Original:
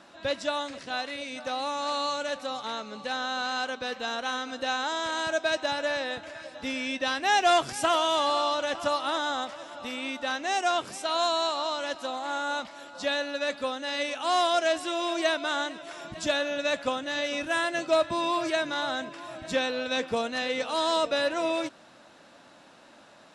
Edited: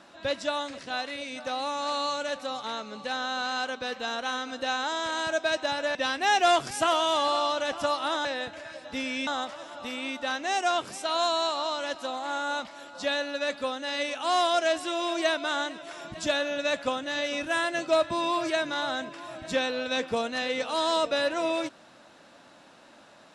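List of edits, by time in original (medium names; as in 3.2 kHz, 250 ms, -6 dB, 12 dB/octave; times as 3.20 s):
5.95–6.97 s: move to 9.27 s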